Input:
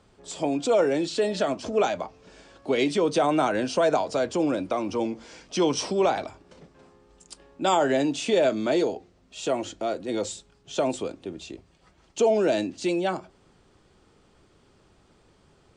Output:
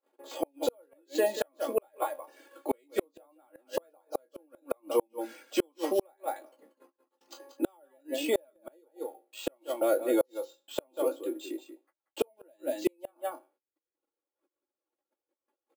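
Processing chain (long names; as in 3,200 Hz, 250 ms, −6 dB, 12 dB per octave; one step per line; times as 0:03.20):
peak hold with a decay on every bin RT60 0.35 s
reverb reduction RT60 1.1 s
noise gate −56 dBFS, range −35 dB
Butterworth high-pass 350 Hz 36 dB per octave
spectral tilt −3.5 dB per octave
comb filter 3.6 ms, depth 76%
on a send: single-tap delay 184 ms −11.5 dB
on the sum: gate with flip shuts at −15 dBFS, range −42 dB
bad sample-rate conversion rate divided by 4×, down filtered, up hold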